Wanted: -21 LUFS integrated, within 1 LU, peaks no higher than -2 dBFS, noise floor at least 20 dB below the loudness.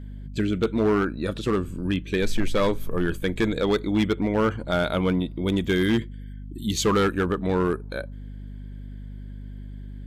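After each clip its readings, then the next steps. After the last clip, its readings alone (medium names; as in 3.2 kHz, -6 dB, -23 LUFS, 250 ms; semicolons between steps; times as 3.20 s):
clipped samples 1.8%; clipping level -15.5 dBFS; hum 50 Hz; highest harmonic 250 Hz; hum level -35 dBFS; loudness -25.0 LUFS; peak level -15.5 dBFS; loudness target -21.0 LUFS
-> clip repair -15.5 dBFS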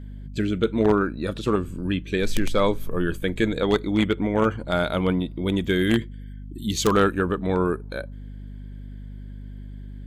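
clipped samples 0.0%; hum 50 Hz; highest harmonic 250 Hz; hum level -35 dBFS
-> hum notches 50/100/150/200/250 Hz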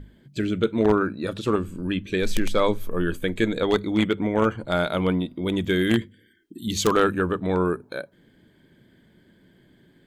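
hum not found; loudness -24.0 LUFS; peak level -6.5 dBFS; loudness target -21.0 LUFS
-> trim +3 dB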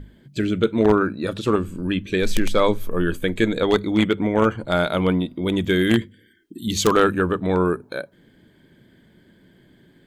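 loudness -21.0 LUFS; peak level -3.5 dBFS; noise floor -56 dBFS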